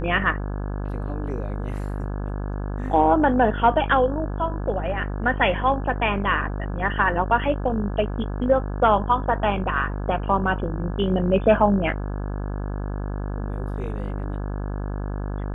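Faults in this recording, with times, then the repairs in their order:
buzz 50 Hz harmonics 34 -28 dBFS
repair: de-hum 50 Hz, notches 34

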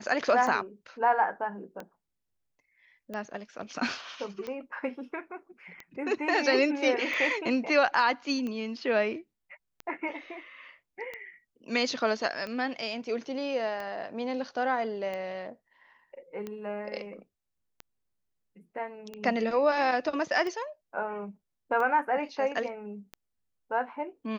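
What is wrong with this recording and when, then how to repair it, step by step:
tick 45 rpm -24 dBFS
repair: de-click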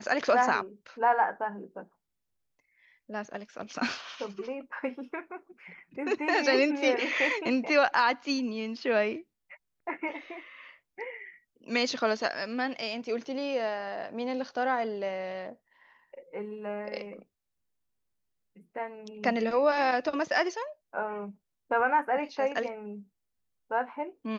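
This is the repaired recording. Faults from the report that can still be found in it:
none

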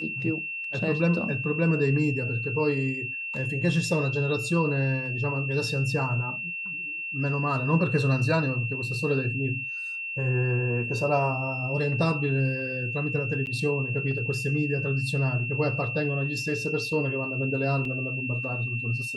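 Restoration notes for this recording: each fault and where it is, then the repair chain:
tone 2700 Hz -31 dBFS
13.46–13.47 gap 9.5 ms
17.85 gap 2.7 ms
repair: notch 2700 Hz, Q 30; interpolate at 13.46, 9.5 ms; interpolate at 17.85, 2.7 ms

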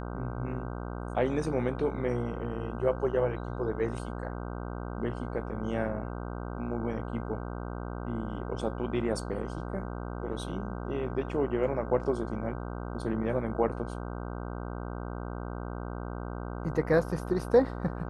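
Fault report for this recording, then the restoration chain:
buzz 60 Hz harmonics 26 -37 dBFS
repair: de-hum 60 Hz, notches 26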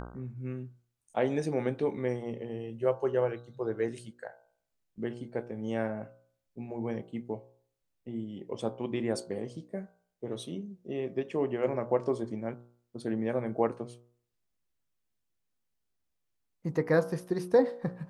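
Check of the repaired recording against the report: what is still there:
none

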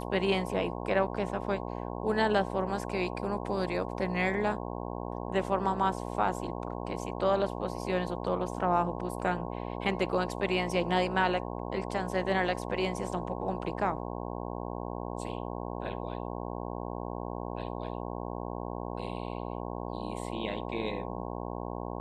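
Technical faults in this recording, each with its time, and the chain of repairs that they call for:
buzz 60 Hz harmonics 18 -37 dBFS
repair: de-hum 60 Hz, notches 18

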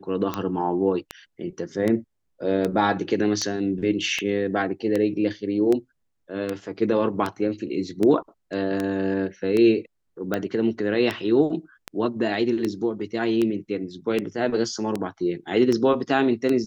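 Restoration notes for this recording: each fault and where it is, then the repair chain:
tick 78 rpm -12 dBFS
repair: de-click

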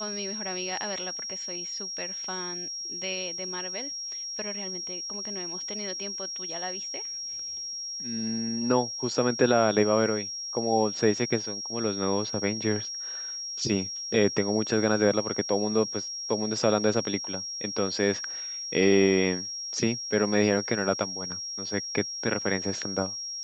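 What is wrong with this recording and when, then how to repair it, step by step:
tone 5600 Hz -33 dBFS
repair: notch 5600 Hz, Q 30

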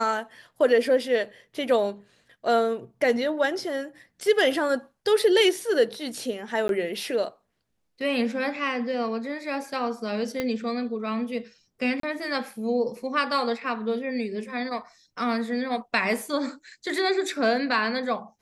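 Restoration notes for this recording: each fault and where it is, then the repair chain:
6.68–6.69 gap 12 ms
10.4 pop -13 dBFS
12–12.03 gap 33 ms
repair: de-click; interpolate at 6.68, 12 ms; interpolate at 12, 33 ms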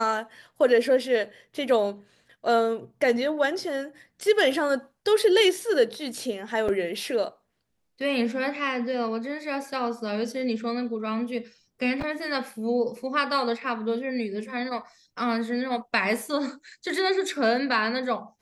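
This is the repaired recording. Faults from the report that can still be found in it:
10.4 pop

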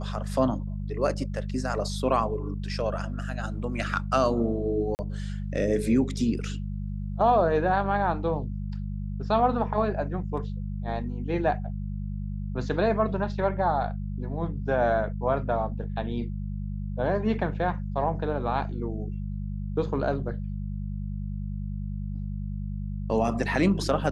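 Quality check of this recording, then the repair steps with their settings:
hum 50 Hz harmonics 4 -32 dBFS
4.95–4.99 gap 39 ms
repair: de-hum 50 Hz, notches 4; interpolate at 4.95, 39 ms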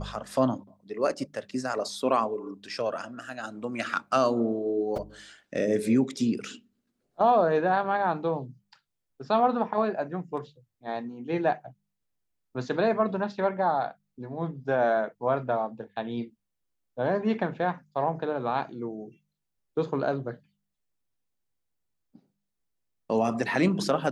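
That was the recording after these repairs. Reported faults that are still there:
none

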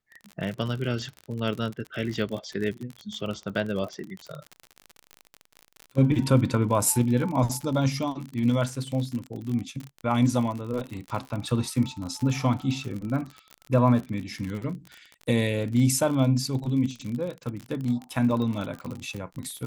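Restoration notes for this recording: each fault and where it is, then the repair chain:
crackle 50/s -31 dBFS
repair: de-click

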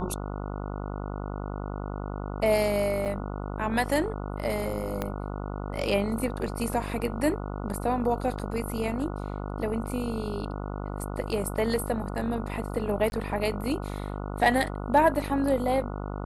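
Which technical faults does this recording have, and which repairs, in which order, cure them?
buzz 50 Hz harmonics 29 -34 dBFS
3.05–3.06 gap 7.4 ms
5.02 pop -15 dBFS
8.39–8.4 gap 6.2 ms
13.1–13.12 gap 21 ms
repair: de-click; de-hum 50 Hz, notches 29; interpolate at 3.05, 7.4 ms; interpolate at 8.39, 6.2 ms; interpolate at 13.1, 21 ms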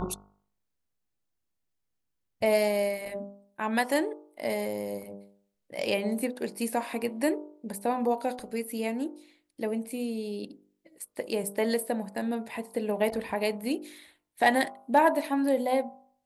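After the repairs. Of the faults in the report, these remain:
5.02 pop

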